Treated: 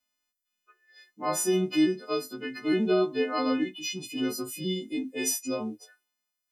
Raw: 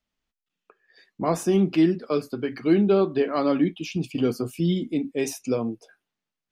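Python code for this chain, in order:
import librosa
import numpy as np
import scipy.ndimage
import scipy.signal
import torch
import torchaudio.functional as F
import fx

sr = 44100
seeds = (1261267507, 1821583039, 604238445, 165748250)

y = fx.freq_snap(x, sr, grid_st=3)
y = fx.hpss(y, sr, part='percussive', gain_db=-16)
y = fx.low_shelf_res(y, sr, hz=190.0, db=-7.0, q=1.5)
y = y * 10.0 ** (-4.5 / 20.0)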